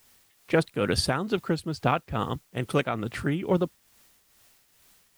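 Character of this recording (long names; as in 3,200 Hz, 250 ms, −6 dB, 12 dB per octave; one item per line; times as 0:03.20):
a quantiser's noise floor 10 bits, dither triangular
tremolo triangle 2.3 Hz, depth 60%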